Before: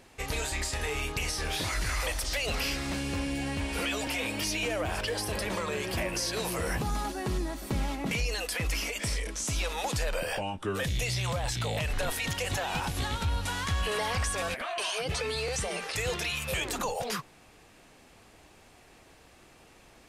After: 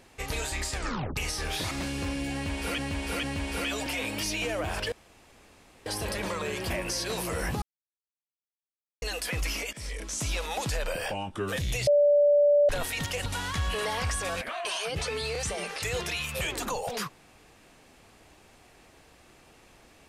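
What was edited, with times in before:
0:00.73: tape stop 0.43 s
0:01.71–0:02.82: remove
0:03.44–0:03.89: repeat, 3 plays
0:05.13: splice in room tone 0.94 s
0:06.89–0:08.29: silence
0:09.00–0:09.46: fade in equal-power, from −17.5 dB
0:11.14–0:11.96: beep over 582 Hz −17 dBFS
0:12.53–0:13.39: remove

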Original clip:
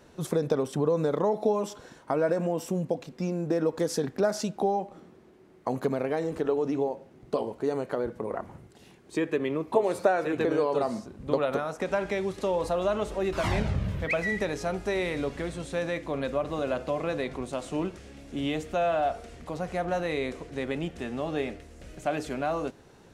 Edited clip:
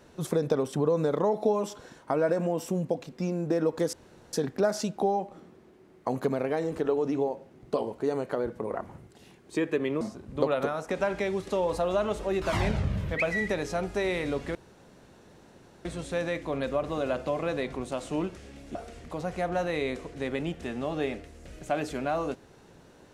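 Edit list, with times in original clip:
0:03.93: splice in room tone 0.40 s
0:09.61–0:10.92: remove
0:15.46: splice in room tone 1.30 s
0:18.36–0:19.11: remove

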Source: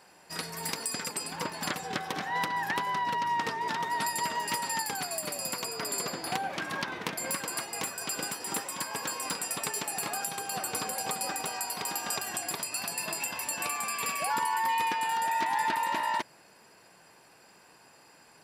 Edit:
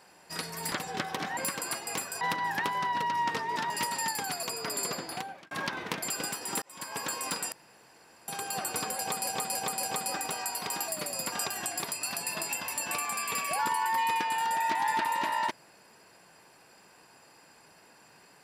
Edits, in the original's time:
0:00.72–0:01.68: remove
0:03.82–0:04.41: remove
0:05.14–0:05.58: move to 0:12.03
0:06.08–0:06.66: fade out linear
0:07.23–0:08.07: move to 0:02.33
0:08.61–0:09.00: fade in
0:09.51–0:10.27: fill with room tone
0:10.98–0:11.26: repeat, 4 plays

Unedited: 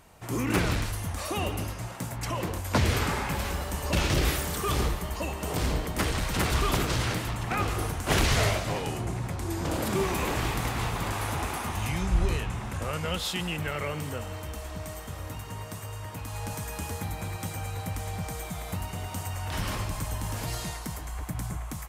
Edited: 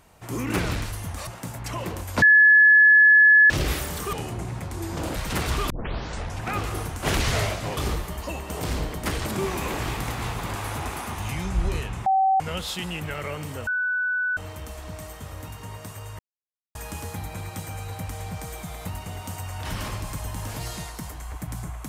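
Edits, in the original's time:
0:01.27–0:01.84: remove
0:02.79–0:04.07: beep over 1,710 Hz −10.5 dBFS
0:04.70–0:06.19: swap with 0:08.81–0:09.83
0:06.74: tape start 0.78 s
0:12.63–0:12.97: beep over 768 Hz −16.5 dBFS
0:14.24: insert tone 1,490 Hz −22 dBFS 0.70 s
0:16.06–0:16.62: silence

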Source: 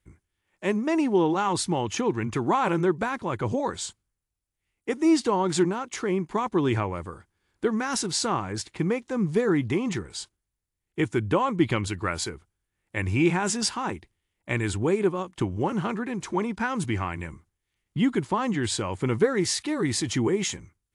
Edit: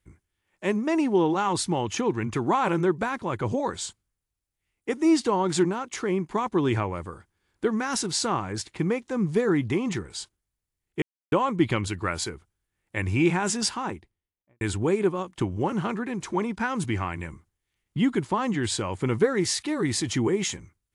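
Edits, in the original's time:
0:11.02–0:11.32: silence
0:13.67–0:14.61: fade out and dull

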